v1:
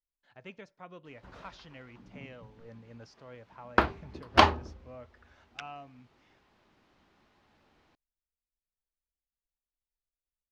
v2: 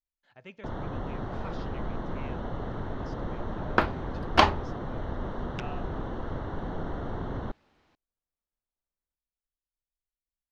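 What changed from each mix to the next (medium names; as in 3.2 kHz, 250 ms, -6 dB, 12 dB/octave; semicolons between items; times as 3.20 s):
first sound: unmuted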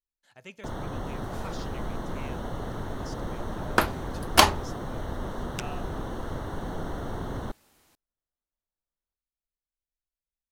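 master: remove distance through air 230 m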